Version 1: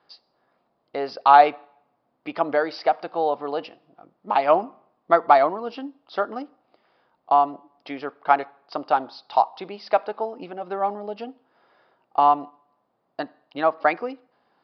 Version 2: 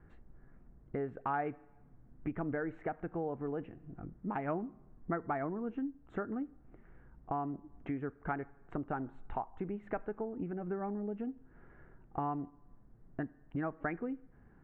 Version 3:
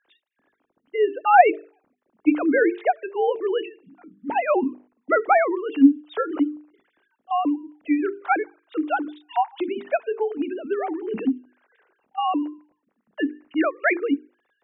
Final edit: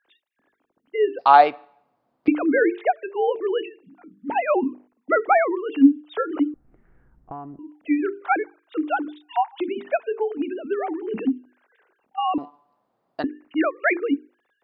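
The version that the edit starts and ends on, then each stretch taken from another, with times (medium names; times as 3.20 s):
3
1.19–2.28 s: from 1
6.54–7.59 s: from 2
12.38–13.24 s: from 1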